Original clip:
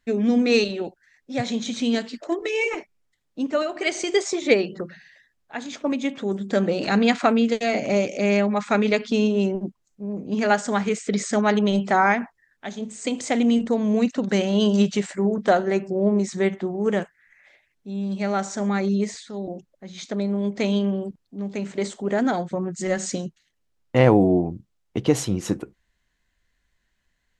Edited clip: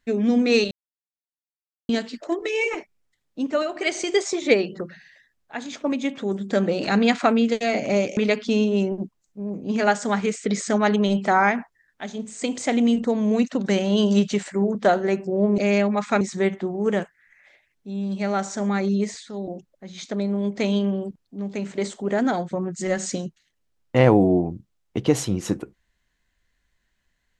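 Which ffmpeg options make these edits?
-filter_complex "[0:a]asplit=6[a][b][c][d][e][f];[a]atrim=end=0.71,asetpts=PTS-STARTPTS,afade=t=out:st=0.706:d=0.004:c=hsin[g];[b]atrim=start=0.71:end=1.89,asetpts=PTS-STARTPTS,volume=0[h];[c]atrim=start=1.89:end=8.172,asetpts=PTS-STARTPTS,afade=t=in:d=0.004:c=hsin[i];[d]atrim=start=8.798:end=16.212[j];[e]atrim=start=8.168:end=8.802[k];[f]atrim=start=16.208[l];[g][h][i]concat=n=3:v=0:a=1[m];[m][j]acrossfade=d=0.004:c1=hsin:c2=hsin[n];[n][k]acrossfade=d=0.004:c1=hsin:c2=hsin[o];[o][l]acrossfade=d=0.004:c1=hsin:c2=hsin"

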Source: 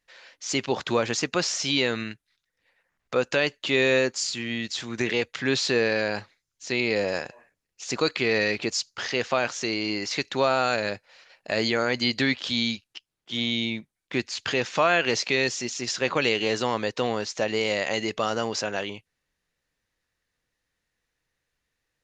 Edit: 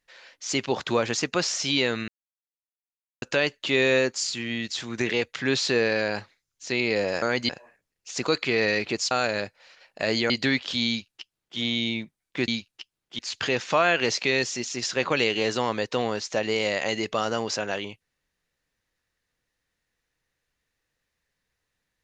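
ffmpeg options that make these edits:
-filter_complex "[0:a]asplit=9[a][b][c][d][e][f][g][h][i];[a]atrim=end=2.08,asetpts=PTS-STARTPTS,afade=t=out:st=2.076:d=0.004:c=hsin[j];[b]atrim=start=2.08:end=3.22,asetpts=PTS-STARTPTS,volume=0[k];[c]atrim=start=3.22:end=7.222,asetpts=PTS-STARTPTS,afade=t=in:d=0.004:c=hsin[l];[d]atrim=start=11.788:end=12.062[m];[e]atrim=start=7.218:end=8.842[n];[f]atrim=start=10.598:end=11.792[o];[g]atrim=start=12.058:end=14.242[p];[h]atrim=start=12.638:end=13.352[q];[i]atrim=start=14.238[r];[j][k][l]concat=n=3:v=0:a=1[s];[s][m]acrossfade=d=0.004:c1=hsin:c2=hsin[t];[t][n]acrossfade=d=0.004:c1=hsin:c2=hsin[u];[u][o]acrossfade=d=0.004:c1=hsin:c2=hsin[v];[v][p]acrossfade=d=0.004:c1=hsin:c2=hsin[w];[w][q]acrossfade=d=0.004:c1=hsin:c2=hsin[x];[x][r]acrossfade=d=0.004:c1=hsin:c2=hsin"

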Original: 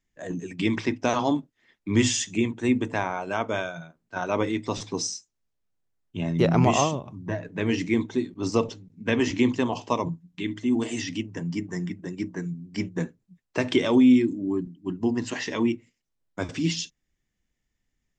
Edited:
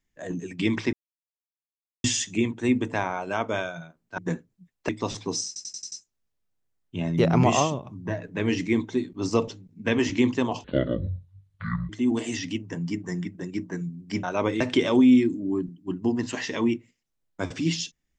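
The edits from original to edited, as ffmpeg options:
-filter_complex "[0:a]asplit=14[a][b][c][d][e][f][g][h][i][j][k][l][m][n];[a]atrim=end=0.93,asetpts=PTS-STARTPTS,afade=t=out:st=0.926:d=0.004:c=hsin[o];[b]atrim=start=0.93:end=2.04,asetpts=PTS-STARTPTS,volume=0[p];[c]atrim=start=2.04:end=4.182,asetpts=PTS-STARTPTS,afade=t=in:d=0.004:c=hsin[q];[d]atrim=start=12.878:end=13.592[r];[e]atrim=start=4.548:end=5.222[s];[f]atrim=start=5.128:end=5.222[t];[g]atrim=start=5.128:end=5.222[u];[h]atrim=start=5.128:end=5.222[v];[i]atrim=start=5.128:end=5.222[w];[j]atrim=start=5.128:end=9.854[x];[k]atrim=start=9.85:end=10.54,asetpts=PTS-STARTPTS,asetrate=24255,aresample=44100,atrim=end_sample=55325,asetpts=PTS-STARTPTS[y];[l]atrim=start=10.536:end=12.882[z];[m]atrim=start=4.178:end=4.552[aa];[n]atrim=start=13.588[ab];[o][p][q]concat=n=3:v=0:a=1[ac];[ac][r]acrossfade=d=0.004:c1=hsin:c2=hsin[ad];[ad][s]acrossfade=d=0.004:c1=hsin:c2=hsin[ae];[ae][t]acrossfade=d=0.004:c1=hsin:c2=hsin[af];[af][u]acrossfade=d=0.004:c1=hsin:c2=hsin[ag];[ag][v]acrossfade=d=0.004:c1=hsin:c2=hsin[ah];[ah][w]acrossfade=d=0.004:c1=hsin:c2=hsin[ai];[ai][x]acrossfade=d=0.004:c1=hsin:c2=hsin[aj];[aj][y]acrossfade=d=0.004:c1=hsin:c2=hsin[ak];[ak][z]acrossfade=d=0.004:c1=hsin:c2=hsin[al];[al][aa]acrossfade=d=0.004:c1=hsin:c2=hsin[am];[am][ab]acrossfade=d=0.004:c1=hsin:c2=hsin"

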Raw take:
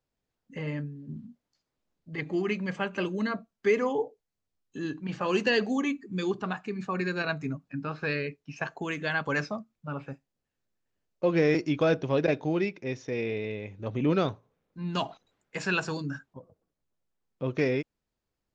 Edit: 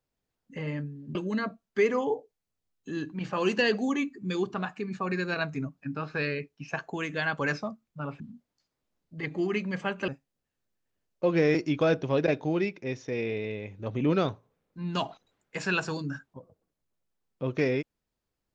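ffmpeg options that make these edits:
-filter_complex "[0:a]asplit=4[a][b][c][d];[a]atrim=end=1.152[e];[b]atrim=start=3.028:end=10.082[f];[c]atrim=start=1.148:end=3.032[g];[d]atrim=start=10.078[h];[e][f]acrossfade=d=0.004:c1=hsin:c2=hsin[i];[i][g]acrossfade=d=0.004:c1=hsin:c2=hsin[j];[j][h]acrossfade=d=0.004:c1=hsin:c2=hsin"

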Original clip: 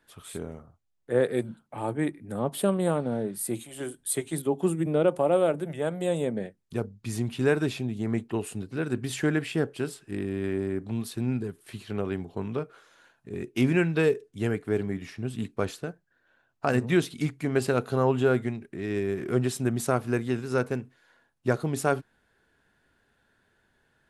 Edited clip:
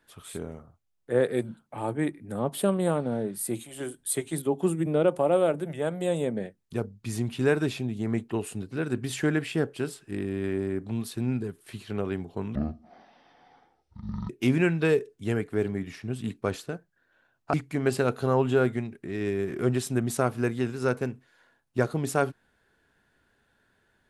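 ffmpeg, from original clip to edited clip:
-filter_complex "[0:a]asplit=4[a][b][c][d];[a]atrim=end=12.554[e];[b]atrim=start=12.55:end=13.44,asetpts=PTS-STARTPTS,asetrate=22491,aresample=44100[f];[c]atrim=start=13.436:end=16.682[g];[d]atrim=start=17.228[h];[e][f]acrossfade=d=0.004:c1=hsin:c2=hsin[i];[i][g]acrossfade=d=0.004:c1=hsin:c2=hsin[j];[j][h]acrossfade=d=0.004:c1=hsin:c2=hsin"

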